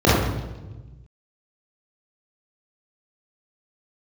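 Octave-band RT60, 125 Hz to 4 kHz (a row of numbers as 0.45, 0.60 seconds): 1.9, 1.5, 1.3, 1.0, 0.90, 0.95 seconds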